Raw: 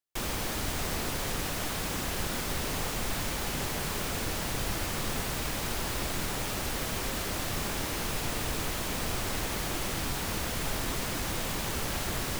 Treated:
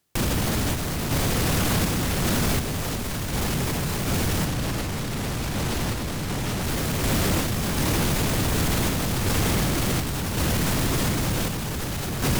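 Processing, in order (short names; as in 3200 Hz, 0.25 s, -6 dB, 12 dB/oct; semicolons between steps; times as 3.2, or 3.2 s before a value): 4.46–6.63 high shelf 11000 Hz -6.5 dB; sine folder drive 13 dB, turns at -17.5 dBFS; bell 130 Hz +11.5 dB 2.8 oct; limiter -17.5 dBFS, peak gain reduction 10.5 dB; random-step tremolo 2.7 Hz; gain +2 dB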